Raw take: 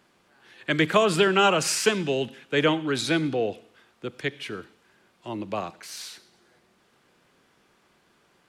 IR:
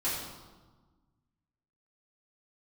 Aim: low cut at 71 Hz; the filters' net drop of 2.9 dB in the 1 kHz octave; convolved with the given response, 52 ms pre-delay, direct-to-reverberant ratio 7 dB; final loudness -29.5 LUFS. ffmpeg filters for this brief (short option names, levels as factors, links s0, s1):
-filter_complex "[0:a]highpass=71,equalizer=f=1000:t=o:g=-4,asplit=2[s0][s1];[1:a]atrim=start_sample=2205,adelay=52[s2];[s1][s2]afir=irnorm=-1:irlink=0,volume=0.2[s3];[s0][s3]amix=inputs=2:normalize=0,volume=0.562"